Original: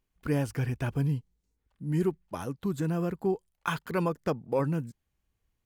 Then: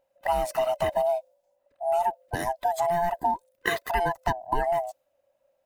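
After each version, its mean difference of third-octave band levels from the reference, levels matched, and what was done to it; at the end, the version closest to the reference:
10.5 dB: neighbouring bands swapped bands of 500 Hz
high-shelf EQ 11,000 Hz +6.5 dB
downward compressor, threshold −28 dBFS, peak gain reduction 6.5 dB
one half of a high-frequency compander decoder only
level +7 dB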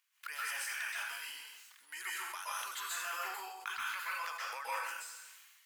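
22.5 dB: high-pass filter 1,300 Hz 24 dB per octave
downward compressor 5 to 1, threshold −51 dBFS, peak gain reduction 19.5 dB
dense smooth reverb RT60 0.65 s, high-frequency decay 0.95×, pre-delay 115 ms, DRR −6.5 dB
level that may fall only so fast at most 34 dB per second
level +7.5 dB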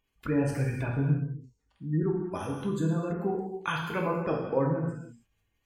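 8.0 dB: gate on every frequency bin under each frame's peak −30 dB strong
parametric band 3,100 Hz +2.5 dB 1.4 octaves
reverb whose tail is shaped and stops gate 350 ms falling, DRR −1.5 dB
one half of a high-frequency compander encoder only
level −2.5 dB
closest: third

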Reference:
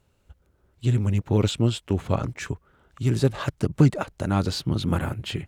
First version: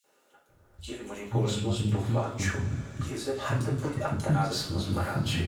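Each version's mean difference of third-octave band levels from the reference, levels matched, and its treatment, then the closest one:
9.5 dB: mains-hum notches 50/100 Hz
downward compressor 2.5 to 1, threshold −33 dBFS, peak gain reduction 14 dB
three-band delay without the direct sound highs, mids, lows 40/490 ms, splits 280/2,900 Hz
coupled-rooms reverb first 0.39 s, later 4.7 s, from −22 dB, DRR −5 dB
level +1 dB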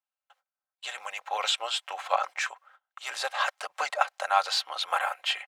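16.5 dB: noise gate −53 dBFS, range −29 dB
elliptic high-pass filter 680 Hz, stop band 60 dB
high-shelf EQ 7,200 Hz −10.5 dB
comb filter 3.8 ms, depth 51%
level +6.5 dB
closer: first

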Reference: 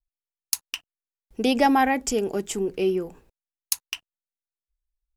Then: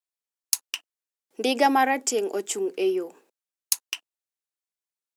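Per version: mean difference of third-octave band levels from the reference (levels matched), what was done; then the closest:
3.0 dB: high-pass filter 290 Hz 24 dB per octave
parametric band 7,700 Hz +3.5 dB 0.9 octaves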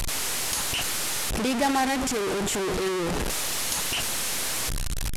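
15.0 dB: linear delta modulator 64 kbit/s, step −15.5 dBFS
level −5 dB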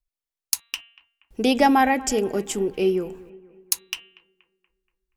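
1.0 dB: hum removal 232.3 Hz, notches 17
on a send: bucket-brigade delay 238 ms, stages 4,096, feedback 49%, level −20 dB
on the sum: level +2 dB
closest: third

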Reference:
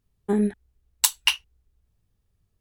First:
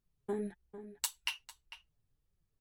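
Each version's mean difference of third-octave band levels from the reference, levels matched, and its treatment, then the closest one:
2.0 dB: downward compressor 2 to 1, threshold −28 dBFS, peak gain reduction 8.5 dB
dynamic equaliser 710 Hz, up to +3 dB, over −43 dBFS, Q 1.1
slap from a distant wall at 77 metres, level −12 dB
flanger 1.7 Hz, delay 5.2 ms, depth 2.8 ms, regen +28%
level −5 dB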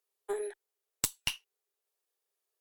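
7.5 dB: Butterworth high-pass 370 Hz 72 dB per octave
high-shelf EQ 5,700 Hz +8.5 dB
downward compressor 10 to 1, threshold −22 dBFS, peak gain reduction 15 dB
harmonic generator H 6 −10 dB, 8 −18 dB, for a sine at −0.5 dBFS
level −6.5 dB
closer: first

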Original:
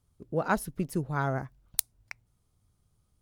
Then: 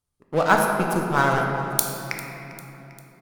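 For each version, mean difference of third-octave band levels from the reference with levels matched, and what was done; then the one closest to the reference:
12.0 dB: low-shelf EQ 480 Hz −9.5 dB
leveller curve on the samples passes 3
repeating echo 398 ms, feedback 52%, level −18 dB
rectangular room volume 130 cubic metres, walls hard, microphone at 0.37 metres
level +1 dB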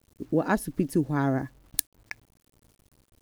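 3.5 dB: parametric band 1,400 Hz −4.5 dB 0.67 octaves
in parallel at −2 dB: downward compressor 16 to 1, threshold −38 dBFS, peak gain reduction 19 dB
on the sum: hollow resonant body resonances 290/1,700 Hz, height 13 dB, ringing for 45 ms
bit-depth reduction 10 bits, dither none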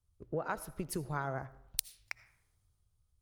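5.0 dB: parametric band 210 Hz −8 dB 1.3 octaves
downward compressor 10 to 1, threshold −38 dBFS, peak gain reduction 18.5 dB
comb and all-pass reverb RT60 0.92 s, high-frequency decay 0.6×, pre-delay 40 ms, DRR 16 dB
multiband upward and downward expander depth 40%
level +4.5 dB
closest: second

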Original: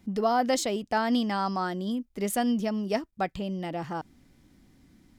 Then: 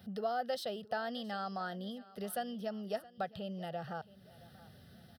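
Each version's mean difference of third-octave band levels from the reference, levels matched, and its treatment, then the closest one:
6.0 dB: high-pass filter 89 Hz 24 dB per octave
downward compressor 2 to 1, threshold −53 dBFS, peak gain reduction 17.5 dB
phaser with its sweep stopped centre 1,500 Hz, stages 8
repeating echo 670 ms, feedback 41%, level −20 dB
level +8 dB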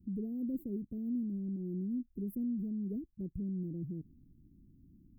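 13.0 dB: inverse Chebyshev band-stop filter 810–5,900 Hz, stop band 70 dB
high-shelf EQ 8,000 Hz −7 dB
brickwall limiter −33 dBFS, peak gain reduction 6 dB
drawn EQ curve 220 Hz 0 dB, 360 Hz +14 dB, 1,200 Hz +2 dB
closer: first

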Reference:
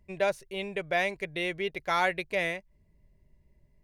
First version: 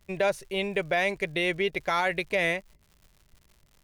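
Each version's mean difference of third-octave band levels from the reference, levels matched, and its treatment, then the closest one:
2.5 dB: brickwall limiter −22 dBFS, peak gain reduction 8 dB
noise gate −57 dBFS, range −7 dB
surface crackle 160 per second −52 dBFS
level +6 dB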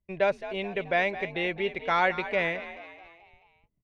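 5.5 dB: noise gate −57 dBFS, range −21 dB
low-pass filter 3,300 Hz 12 dB per octave
echo with shifted repeats 216 ms, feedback 50%, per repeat +56 Hz, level −13.5 dB
level +2.5 dB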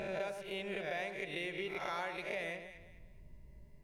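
8.0 dB: peak hold with a rise ahead of every peak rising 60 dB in 0.57 s
downward compressor 5 to 1, threshold −43 dBFS, peak gain reduction 20 dB
delay that swaps between a low-pass and a high-pass 105 ms, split 1,300 Hz, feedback 55%, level −6 dB
level +3.5 dB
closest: first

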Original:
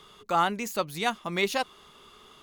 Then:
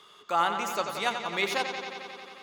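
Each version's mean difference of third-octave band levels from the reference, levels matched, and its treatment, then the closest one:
7.5 dB: high-pass filter 540 Hz 6 dB per octave
high-shelf EQ 8,700 Hz −5.5 dB
bucket-brigade delay 89 ms, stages 4,096, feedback 80%, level −8 dB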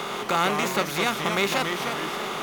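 14.0 dB: compressor on every frequency bin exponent 0.4
dynamic equaliser 770 Hz, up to −4 dB, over −32 dBFS, Q 1.2
delay with pitch and tempo change per echo 113 ms, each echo −2 semitones, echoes 2, each echo −6 dB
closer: first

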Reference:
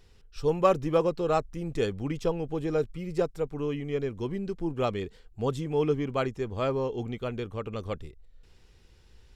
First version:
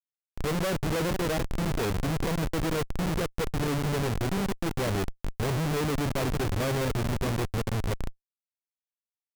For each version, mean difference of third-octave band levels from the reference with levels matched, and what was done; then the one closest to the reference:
13.5 dB: parametric band 960 Hz −11 dB 2.1 octaves
on a send: single-tap delay 445 ms −12.5 dB
on the sum: comparator with hysteresis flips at −36 dBFS
level +7 dB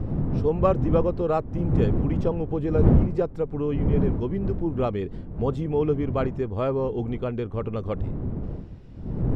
6.5 dB: wind on the microphone 170 Hz −29 dBFS
low-pass filter 1,100 Hz 6 dB per octave
in parallel at +3 dB: downward compressor, threshold −33 dBFS, peak gain reduction 18.5 dB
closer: second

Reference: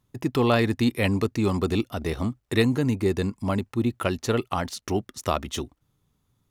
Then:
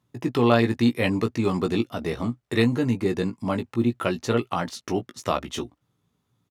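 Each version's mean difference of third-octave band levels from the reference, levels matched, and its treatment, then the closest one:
2.5 dB: high-pass filter 110 Hz 12 dB per octave
high-shelf EQ 7,900 Hz −8.5 dB
double-tracking delay 17 ms −6 dB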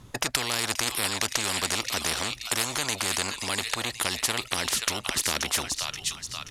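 14.5 dB: low-pass filter 10,000 Hz 12 dB per octave
on a send: delay with a high-pass on its return 529 ms, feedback 43%, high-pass 3,000 Hz, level −11 dB
on the sum: every bin compressed towards the loudest bin 10 to 1
level +3.5 dB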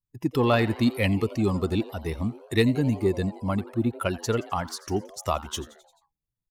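4.5 dB: spectral dynamics exaggerated over time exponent 1.5
in parallel at −7 dB: soft clipping −19 dBFS, distortion −16 dB
on the sum: echo with shifted repeats 87 ms, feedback 60%, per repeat +150 Hz, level −19 dB
level −1 dB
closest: first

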